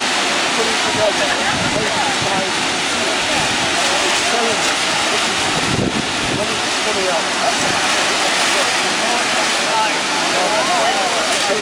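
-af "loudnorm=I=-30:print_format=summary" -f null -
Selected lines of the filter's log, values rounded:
Input Integrated:    -15.2 LUFS
Input True Peak:      -6.4 dBTP
Input LRA:             0.8 LU
Input Threshold:     -25.2 LUFS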